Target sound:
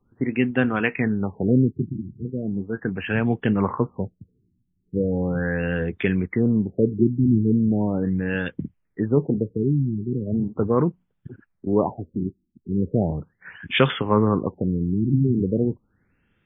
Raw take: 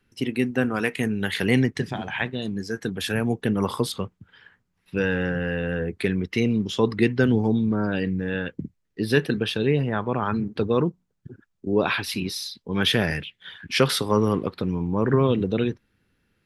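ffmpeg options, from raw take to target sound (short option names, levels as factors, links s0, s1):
-af "equalizer=f=440:t=o:w=0.77:g=-2.5,afftfilt=real='re*lt(b*sr/1024,370*pow(3700/370,0.5+0.5*sin(2*PI*0.38*pts/sr)))':imag='im*lt(b*sr/1024,370*pow(3700/370,0.5+0.5*sin(2*PI*0.38*pts/sr)))':win_size=1024:overlap=0.75,volume=1.41"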